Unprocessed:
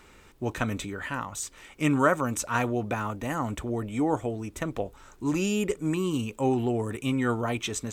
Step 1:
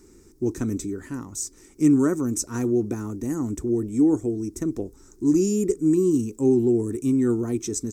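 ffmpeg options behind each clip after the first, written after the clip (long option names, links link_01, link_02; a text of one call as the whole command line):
ffmpeg -i in.wav -af "firequalizer=gain_entry='entry(160,0);entry(350,10);entry(560,-13);entry(890,-13);entry(1900,-13);entry(3000,-20);entry(5400,4);entry(13000,0)':delay=0.05:min_phase=1,volume=1.5dB" out.wav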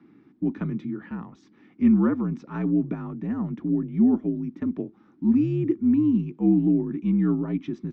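ffmpeg -i in.wav -af "highpass=frequency=210:width_type=q:width=0.5412,highpass=frequency=210:width_type=q:width=1.307,lowpass=frequency=3300:width_type=q:width=0.5176,lowpass=frequency=3300:width_type=q:width=0.7071,lowpass=frequency=3300:width_type=q:width=1.932,afreqshift=-67" out.wav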